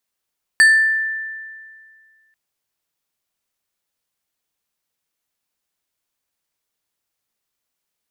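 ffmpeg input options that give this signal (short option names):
-f lavfi -i "aevalsrc='0.501*pow(10,-3*t/1.97)*sin(2*PI*1770*t+0.51*pow(10,-3*t/0.71)*sin(2*PI*3.59*1770*t))':d=1.74:s=44100"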